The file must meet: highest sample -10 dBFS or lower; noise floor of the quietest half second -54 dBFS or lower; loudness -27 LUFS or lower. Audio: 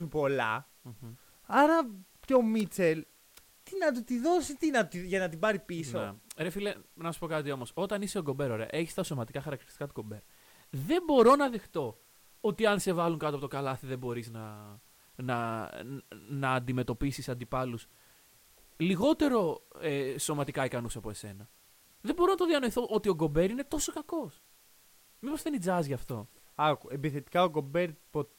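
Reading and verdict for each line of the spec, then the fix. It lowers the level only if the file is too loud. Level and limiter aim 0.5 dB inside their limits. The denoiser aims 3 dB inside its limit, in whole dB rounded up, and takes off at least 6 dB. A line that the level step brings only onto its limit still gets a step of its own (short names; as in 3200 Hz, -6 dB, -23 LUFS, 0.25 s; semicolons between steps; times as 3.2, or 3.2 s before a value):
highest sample -13.0 dBFS: OK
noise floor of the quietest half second -62 dBFS: OK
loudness -31.5 LUFS: OK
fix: none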